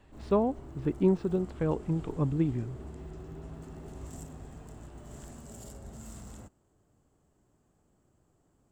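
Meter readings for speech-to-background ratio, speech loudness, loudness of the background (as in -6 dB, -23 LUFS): 16.5 dB, -30.0 LUFS, -46.5 LUFS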